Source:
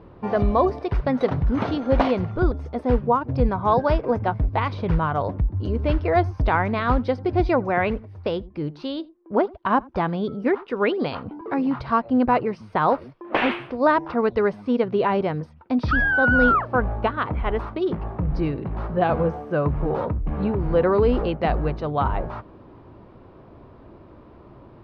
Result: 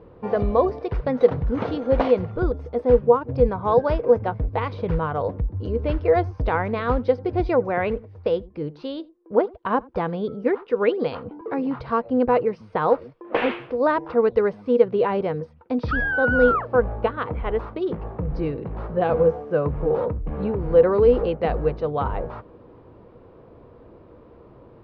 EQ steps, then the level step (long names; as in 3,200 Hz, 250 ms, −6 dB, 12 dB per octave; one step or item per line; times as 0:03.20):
high-frequency loss of the air 56 metres
parametric band 480 Hz +12 dB 0.24 octaves
−3.0 dB